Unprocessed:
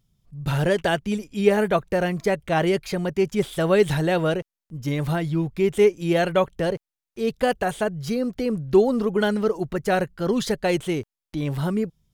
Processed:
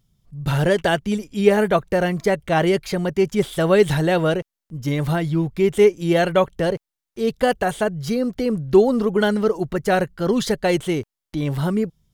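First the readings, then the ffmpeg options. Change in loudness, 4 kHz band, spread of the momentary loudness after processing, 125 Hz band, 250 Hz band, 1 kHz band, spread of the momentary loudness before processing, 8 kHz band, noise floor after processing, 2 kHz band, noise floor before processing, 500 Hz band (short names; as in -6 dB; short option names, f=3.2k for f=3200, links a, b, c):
+3.0 dB, +3.0 dB, 9 LU, +3.0 dB, +3.0 dB, +3.0 dB, 9 LU, +3.0 dB, -85 dBFS, +3.0 dB, under -85 dBFS, +3.0 dB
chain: -af "bandreject=f=2.5k:w=22,volume=3dB"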